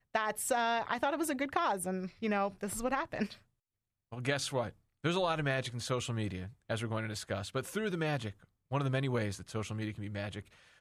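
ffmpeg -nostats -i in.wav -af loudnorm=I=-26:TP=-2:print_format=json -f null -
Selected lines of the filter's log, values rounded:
"input_i" : "-35.4",
"input_tp" : "-15.4",
"input_lra" : "3.5",
"input_thresh" : "-45.7",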